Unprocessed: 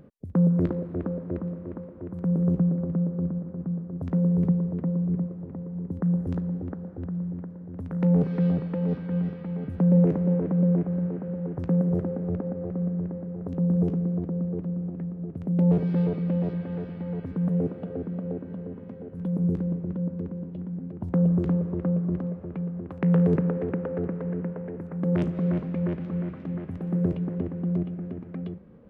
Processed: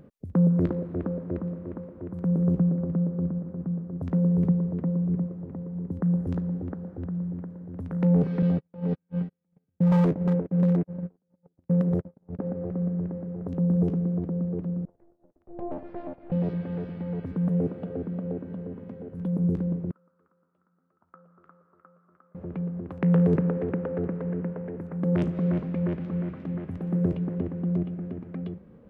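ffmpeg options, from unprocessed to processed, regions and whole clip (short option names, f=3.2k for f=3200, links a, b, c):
-filter_complex "[0:a]asettb=1/sr,asplit=3[a][b][c];[a]atrim=end=8.424[d];[b]atrim=start=8.42:end=12.39,asetpts=PTS-STARTPTS,afade=t=in:d=0.004:c=qsin,afade=t=out:st=3.966:d=0.004:c=qsin,agate=range=-45dB:threshold=-26dB:ratio=16:release=100:detection=peak,aeval=exprs='0.15*(abs(mod(val(0)/0.15+3,4)-2)-1)':c=same[e];[c]atrim=start=12.386[f];[d][e]acrossfade=d=0.004:c1=hsin:c2=qsin[g];[g][f]acrossfade=d=0.004:c1=qsin:c2=hsin,asettb=1/sr,asplit=3[h][i][j];[h]atrim=end=14.854[k];[i]atrim=start=14.85:end=16.32,asetpts=PTS-STARTPTS,afade=t=in:d=0.004:c=qsin,afade=t=out:st=1.466:d=0.004:c=qsin,agate=range=-33dB:threshold=-24dB:ratio=3:release=100:detection=peak,acrossover=split=360 2100:gain=0.178 1 0.2[l][m][n];[l][m][n]amix=inputs=3:normalize=0,aeval=exprs='val(0)*sin(2*PI*170*n/s)':c=same[o];[j]atrim=start=16.316[p];[k][o]acrossfade=d=0.004:c1=hsin:c2=qsin[q];[q][p]acrossfade=d=0.004:c1=qsin:c2=hsin,asettb=1/sr,asplit=3[r][s][t];[r]atrim=end=19.914[u];[s]atrim=start=19.91:end=22.35,asetpts=PTS-STARTPTS,afade=t=in:d=0.004:c=qsin,afade=t=out:st=2.436:d=0.004:c=qsin,bandpass=f=1.3k:t=q:w=13,asplit=2[v][w];[w]adelay=13,volume=-12.5dB[x];[v][x]amix=inputs=2:normalize=0,atrim=end_sample=107604[y];[t]atrim=start=22.346[z];[u][y]acrossfade=d=0.004:c1=hsin:c2=qsin[aa];[aa][z]acrossfade=d=0.004:c1=qsin:c2=hsin"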